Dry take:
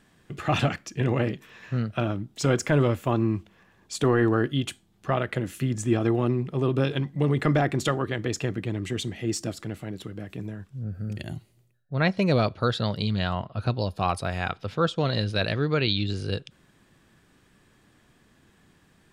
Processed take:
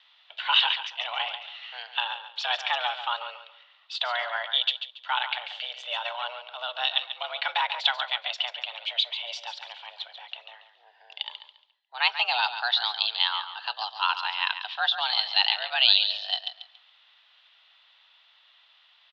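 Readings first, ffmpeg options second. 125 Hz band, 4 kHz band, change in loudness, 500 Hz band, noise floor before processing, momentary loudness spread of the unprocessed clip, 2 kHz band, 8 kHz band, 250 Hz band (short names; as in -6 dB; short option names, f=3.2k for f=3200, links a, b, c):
under -40 dB, +11.5 dB, +0.5 dB, -15.0 dB, -62 dBFS, 13 LU, +4.0 dB, under -15 dB, under -40 dB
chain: -af "aexciter=amount=10.7:drive=2.7:freq=2.7k,highpass=f=590:t=q:w=0.5412,highpass=f=590:t=q:w=1.307,lowpass=f=3.2k:t=q:w=0.5176,lowpass=f=3.2k:t=q:w=0.7071,lowpass=f=3.2k:t=q:w=1.932,afreqshift=240,aecho=1:1:140|280|420:0.316|0.0885|0.0248"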